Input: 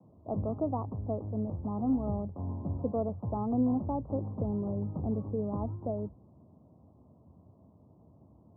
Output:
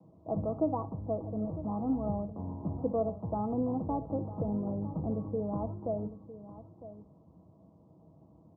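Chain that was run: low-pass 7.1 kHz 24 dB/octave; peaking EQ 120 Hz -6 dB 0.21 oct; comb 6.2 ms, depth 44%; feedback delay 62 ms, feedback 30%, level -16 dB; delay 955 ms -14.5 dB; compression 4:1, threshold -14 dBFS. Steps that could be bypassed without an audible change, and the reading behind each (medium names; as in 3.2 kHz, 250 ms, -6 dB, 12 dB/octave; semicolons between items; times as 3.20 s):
low-pass 7.1 kHz: input has nothing above 1.1 kHz; compression, threshold -14 dBFS: peak at its input -18.0 dBFS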